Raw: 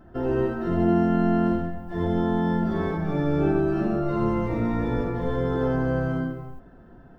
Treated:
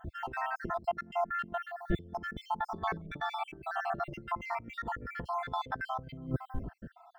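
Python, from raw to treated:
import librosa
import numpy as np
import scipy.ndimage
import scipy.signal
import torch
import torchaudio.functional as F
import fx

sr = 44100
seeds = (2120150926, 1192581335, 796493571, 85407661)

y = fx.spec_dropout(x, sr, seeds[0], share_pct=61)
y = fx.peak_eq(y, sr, hz=73.0, db=9.0, octaves=2.7)
y = fx.over_compress(y, sr, threshold_db=-31.0, ratio=-0.5)
y = y * 10.0 ** (-3.5 / 20.0)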